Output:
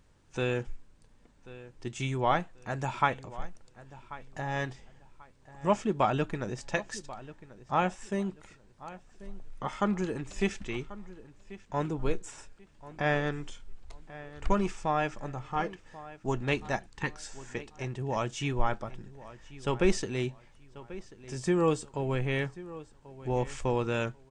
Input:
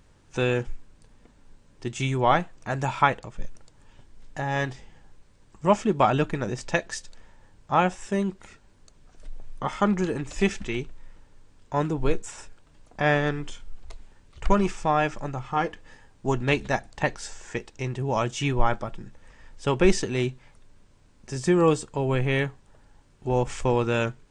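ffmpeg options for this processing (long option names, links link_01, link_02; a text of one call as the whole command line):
ffmpeg -i in.wav -filter_complex "[0:a]asettb=1/sr,asplit=3[link_01][link_02][link_03];[link_01]atrim=end=16.864[link_04];[link_02]atrim=start=16.86:end=17.26,asetpts=PTS-STARTPTS,afade=type=in:duration=0.004:curve=qsin,afade=type=out:start_time=0.396:duration=0.004:curve=qsin,asuperstop=centerf=650:order=4:qfactor=1.7[link_05];[link_03]atrim=start=17.256[link_06];[link_04][link_05]acrossfade=duration=0.004:curve1=hsin:curve2=qsin[link_07];[link_07][link_06]acrossfade=duration=0.004:curve1=qsin:curve2=hsin,asplit=2[link_08][link_09];[link_09]adelay=1088,lowpass=frequency=4100:poles=1,volume=-17dB,asplit=2[link_10][link_11];[link_11]adelay=1088,lowpass=frequency=4100:poles=1,volume=0.27,asplit=2[link_12][link_13];[link_13]adelay=1088,lowpass=frequency=4100:poles=1,volume=0.27[link_14];[link_08][link_10][link_12][link_14]amix=inputs=4:normalize=0,volume=-6dB" out.wav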